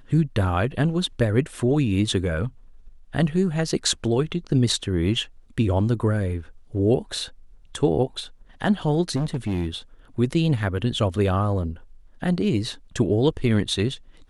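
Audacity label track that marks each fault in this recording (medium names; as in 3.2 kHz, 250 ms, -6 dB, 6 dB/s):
9.150000	9.680000	clipped -21 dBFS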